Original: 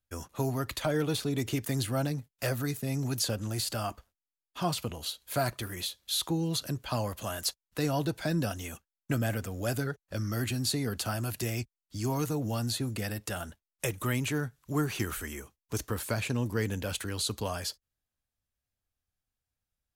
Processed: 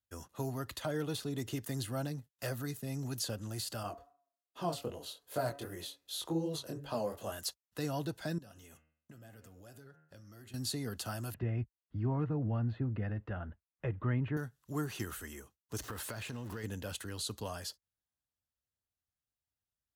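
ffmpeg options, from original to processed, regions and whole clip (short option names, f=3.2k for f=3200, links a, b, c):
-filter_complex "[0:a]asettb=1/sr,asplit=3[a][b][c];[a]atrim=end=3.834[d];[b]atrim=start=3.83:end=7.32,asetpts=PTS-STARTPTS,afade=t=in:d=0.004:c=qsin,afade=t=out:st=3.486:d=0.004:c=qsin,equalizer=f=470:w=0.84:g=10.5,bandreject=f=140.8:t=h:w=4,bandreject=f=281.6:t=h:w=4,bandreject=f=422.4:t=h:w=4,bandreject=f=563.2:t=h:w=4,bandreject=f=704:t=h:w=4,bandreject=f=844.8:t=h:w=4,bandreject=f=985.6:t=h:w=4,bandreject=f=1.1264k:t=h:w=4,bandreject=f=1.2672k:t=h:w=4,bandreject=f=1.408k:t=h:w=4,bandreject=f=1.5488k:t=h:w=4,bandreject=f=1.6896k:t=h:w=4,bandreject=f=1.8304k:t=h:w=4,bandreject=f=1.9712k:t=h:w=4,bandreject=f=2.112k:t=h:w=4,bandreject=f=2.2528k:t=h:w=4,bandreject=f=2.3936k:t=h:w=4,bandreject=f=2.5344k:t=h:w=4,flanger=delay=20:depth=5.3:speed=2.6[e];[c]atrim=start=7.316[f];[d][e]acrossfade=d=0.004:c1=hsin:c2=qsin[g];[g][f]acrossfade=d=0.004:c1=qsin:c2=hsin,asettb=1/sr,asplit=3[h][i][j];[h]atrim=end=8.384[k];[i]atrim=start=8.38:end=10.54,asetpts=PTS-STARTPTS,afade=t=in:d=0.004:c=qsin,afade=t=out:st=2.156:d=0.004:c=qsin,bandreject=f=77.91:t=h:w=4,bandreject=f=155.82:t=h:w=4,bandreject=f=233.73:t=h:w=4,bandreject=f=311.64:t=h:w=4,bandreject=f=389.55:t=h:w=4,bandreject=f=467.46:t=h:w=4,bandreject=f=545.37:t=h:w=4,bandreject=f=623.28:t=h:w=4,bandreject=f=701.19:t=h:w=4,bandreject=f=779.1:t=h:w=4,bandreject=f=857.01:t=h:w=4,bandreject=f=934.92:t=h:w=4,bandreject=f=1.01283k:t=h:w=4,bandreject=f=1.09074k:t=h:w=4,bandreject=f=1.16865k:t=h:w=4,bandreject=f=1.24656k:t=h:w=4,bandreject=f=1.32447k:t=h:w=4,bandreject=f=1.40238k:t=h:w=4,bandreject=f=1.48029k:t=h:w=4,bandreject=f=1.5582k:t=h:w=4,bandreject=f=1.63611k:t=h:w=4,bandreject=f=1.71402k:t=h:w=4,bandreject=f=1.79193k:t=h:w=4,bandreject=f=1.86984k:t=h:w=4,bandreject=f=1.94775k:t=h:w=4,bandreject=f=2.02566k:t=h:w=4,bandreject=f=2.10357k:t=h:w=4,bandreject=f=2.18148k:t=h:w=4,bandreject=f=2.25939k:t=h:w=4,bandreject=f=2.3373k:t=h:w=4,bandreject=f=2.41521k:t=h:w=4,bandreject=f=2.49312k:t=h:w=4,bandreject=f=2.57103k:t=h:w=4,bandreject=f=2.64894k:t=h:w=4,bandreject=f=2.72685k:t=h:w=4,bandreject=f=2.80476k:t=h:w=4,bandreject=f=2.88267k:t=h:w=4,bandreject=f=2.96058k:t=h:w=4,bandreject=f=3.03849k:t=h:w=4,bandreject=f=3.1164k:t=h:w=4,acompressor=threshold=-40dB:ratio=5:attack=3.2:release=140:knee=1:detection=peak,flanger=delay=4.6:depth=2.9:regen=77:speed=1.4:shape=triangular[l];[j]atrim=start=10.536[m];[k][l]acrossfade=d=0.004:c1=hsin:c2=qsin[n];[n][m]acrossfade=d=0.004:c1=qsin:c2=hsin,asettb=1/sr,asplit=3[o][p][q];[o]atrim=end=11.344[r];[p]atrim=start=11.34:end=14.37,asetpts=PTS-STARTPTS,afade=t=in:d=0.004:c=qsin,afade=t=out:st=3.026:d=0.004:c=qsin,lowpass=f=2.2k:w=0.5412,lowpass=f=2.2k:w=1.3066,lowshelf=f=170:g=11[s];[q]atrim=start=14.366[t];[r][s]acrossfade=d=0.004:c1=hsin:c2=qsin[u];[u][t]acrossfade=d=0.004:c1=qsin:c2=hsin,asettb=1/sr,asplit=3[v][w][x];[v]atrim=end=15.784[y];[w]atrim=start=15.78:end=16.64,asetpts=PTS-STARTPTS,afade=t=in:d=0.004:c=qsin,afade=t=out:st=0.856:d=0.004:c=qsin,aeval=exprs='val(0)+0.5*0.0112*sgn(val(0))':c=same,equalizer=f=1.8k:t=o:w=2.7:g=5,acompressor=threshold=-30dB:ratio=12:attack=3.2:release=140:knee=1:detection=peak[z];[x]atrim=start=16.636[aa];[y][z]acrossfade=d=0.004:c1=hsin:c2=qsin[ab];[ab][aa]acrossfade=d=0.004:c1=qsin:c2=hsin,highpass=54,bandreject=f=2.3k:w=8.1,volume=-7dB"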